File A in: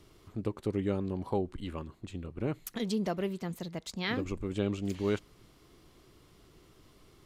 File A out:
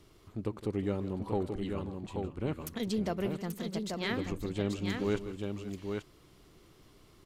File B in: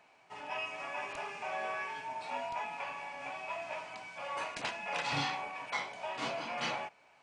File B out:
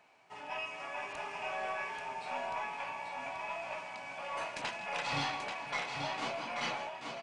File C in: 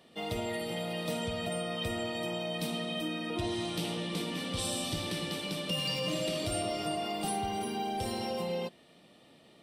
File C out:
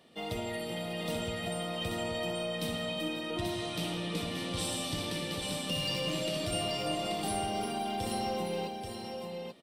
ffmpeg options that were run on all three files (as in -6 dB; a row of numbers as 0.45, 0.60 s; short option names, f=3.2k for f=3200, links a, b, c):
-af "aecho=1:1:162|535|834:0.178|0.141|0.562,aeval=exprs='0.126*(cos(1*acos(clip(val(0)/0.126,-1,1)))-cos(1*PI/2))+0.00398*(cos(4*acos(clip(val(0)/0.126,-1,1)))-cos(4*PI/2))+0.000891*(cos(5*acos(clip(val(0)/0.126,-1,1)))-cos(5*PI/2))':c=same,volume=-1.5dB"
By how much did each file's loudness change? -0.5, 0.0, -0.5 LU